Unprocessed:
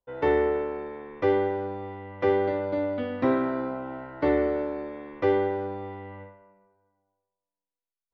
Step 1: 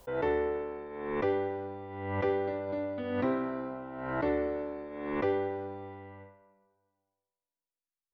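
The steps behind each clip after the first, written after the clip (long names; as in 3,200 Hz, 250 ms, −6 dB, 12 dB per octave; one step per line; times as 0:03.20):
background raised ahead of every attack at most 44 dB per second
level −7 dB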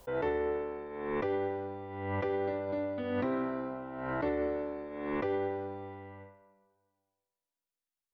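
brickwall limiter −24 dBFS, peak gain reduction 5 dB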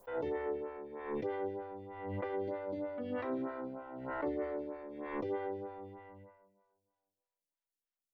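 phaser with staggered stages 3.2 Hz
level −2.5 dB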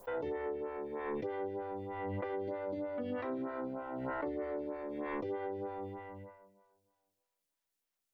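downward compressor, threshold −41 dBFS, peak gain reduction 9 dB
level +6 dB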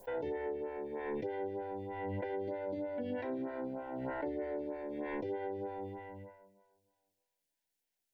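Butterworth band-reject 1,200 Hz, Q 2.7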